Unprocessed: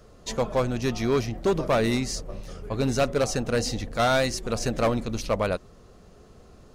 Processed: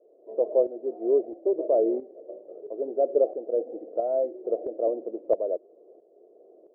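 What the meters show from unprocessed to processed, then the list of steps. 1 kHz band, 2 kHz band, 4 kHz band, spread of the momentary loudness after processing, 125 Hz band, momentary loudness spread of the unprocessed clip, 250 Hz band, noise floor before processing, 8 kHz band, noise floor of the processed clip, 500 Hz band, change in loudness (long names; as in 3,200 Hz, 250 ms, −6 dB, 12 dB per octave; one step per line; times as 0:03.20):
−8.5 dB, below −40 dB, below −40 dB, 11 LU, below −35 dB, 9 LU, −6.5 dB, −52 dBFS, below −40 dB, −58 dBFS, +2.0 dB, −1.0 dB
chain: Chebyshev band-pass filter 330–660 Hz, order 3
shaped tremolo saw up 1.5 Hz, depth 60%
level +5.5 dB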